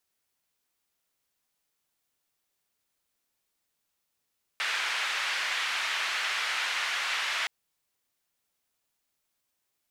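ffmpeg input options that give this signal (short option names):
-f lavfi -i "anoisesrc=c=white:d=2.87:r=44100:seed=1,highpass=f=1600,lowpass=f=2200,volume=-11.8dB"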